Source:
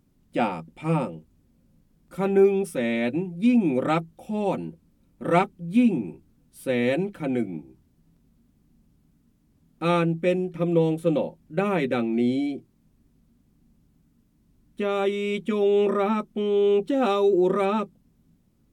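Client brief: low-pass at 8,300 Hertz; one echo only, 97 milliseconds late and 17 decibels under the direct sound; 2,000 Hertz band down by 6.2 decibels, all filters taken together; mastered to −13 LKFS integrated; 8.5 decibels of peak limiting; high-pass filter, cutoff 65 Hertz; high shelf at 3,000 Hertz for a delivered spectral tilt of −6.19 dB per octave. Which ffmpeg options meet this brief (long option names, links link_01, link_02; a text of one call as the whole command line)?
ffmpeg -i in.wav -af "highpass=65,lowpass=8300,equalizer=frequency=2000:width_type=o:gain=-6,highshelf=frequency=3000:gain=-4.5,alimiter=limit=-17.5dB:level=0:latency=1,aecho=1:1:97:0.141,volume=14dB" out.wav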